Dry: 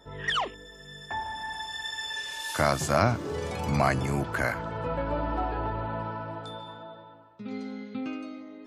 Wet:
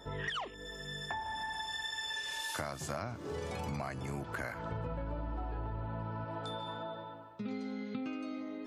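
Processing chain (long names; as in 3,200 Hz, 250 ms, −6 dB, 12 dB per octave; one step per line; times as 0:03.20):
0:04.71–0:06.25: low-shelf EQ 210 Hz +11 dB
downward compressor 8 to 1, threshold −39 dBFS, peak gain reduction 21 dB
level +3 dB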